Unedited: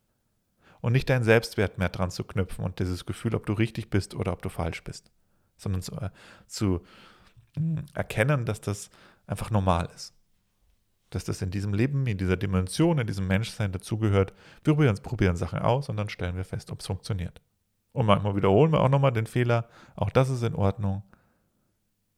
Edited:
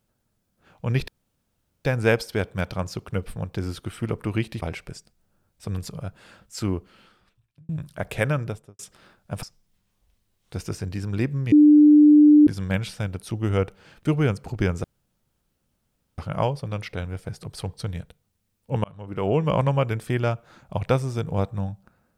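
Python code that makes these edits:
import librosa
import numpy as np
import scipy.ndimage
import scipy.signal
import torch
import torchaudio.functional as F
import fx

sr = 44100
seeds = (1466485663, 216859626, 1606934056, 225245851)

y = fx.studio_fade_out(x, sr, start_s=8.38, length_s=0.4)
y = fx.edit(y, sr, fx.insert_room_tone(at_s=1.08, length_s=0.77),
    fx.cut(start_s=3.85, length_s=0.76),
    fx.fade_out_span(start_s=6.68, length_s=1.0),
    fx.cut(start_s=9.42, length_s=0.61),
    fx.bleep(start_s=12.12, length_s=0.95, hz=298.0, db=-9.0),
    fx.insert_room_tone(at_s=15.44, length_s=1.34),
    fx.fade_in_span(start_s=18.1, length_s=0.67), tone=tone)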